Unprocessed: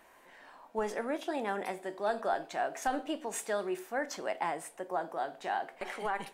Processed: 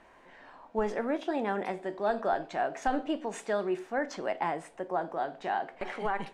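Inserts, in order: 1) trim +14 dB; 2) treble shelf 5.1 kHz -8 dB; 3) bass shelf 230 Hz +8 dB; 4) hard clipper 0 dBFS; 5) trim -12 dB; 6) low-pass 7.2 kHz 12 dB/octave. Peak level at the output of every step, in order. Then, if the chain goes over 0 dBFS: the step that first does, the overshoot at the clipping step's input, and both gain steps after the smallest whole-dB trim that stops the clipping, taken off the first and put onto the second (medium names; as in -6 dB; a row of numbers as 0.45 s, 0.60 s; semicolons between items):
-5.5 dBFS, -6.0 dBFS, -5.5 dBFS, -5.5 dBFS, -17.5 dBFS, -17.5 dBFS; nothing clips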